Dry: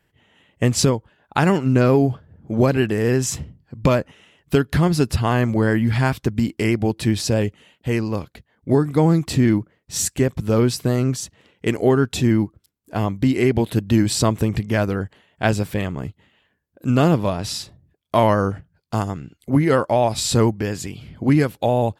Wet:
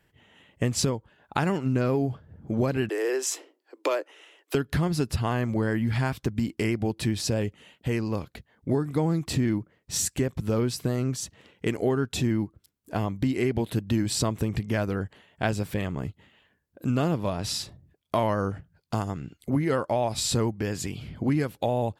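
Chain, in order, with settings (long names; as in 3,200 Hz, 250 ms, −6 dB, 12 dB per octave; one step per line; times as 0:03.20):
0:02.89–0:04.55: Butterworth high-pass 310 Hz 72 dB per octave
downward compressor 2 to 1, threshold −28 dBFS, peak gain reduction 9.5 dB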